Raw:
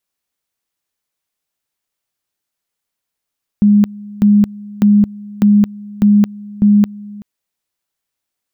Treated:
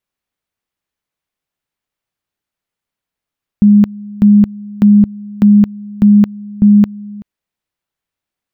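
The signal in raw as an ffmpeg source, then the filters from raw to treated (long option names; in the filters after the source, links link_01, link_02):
-f lavfi -i "aevalsrc='pow(10,(-5.5-22*gte(mod(t,0.6),0.22))/20)*sin(2*PI*206*t)':duration=3.6:sample_rate=44100"
-af "bass=frequency=250:gain=4,treble=frequency=4000:gain=-8"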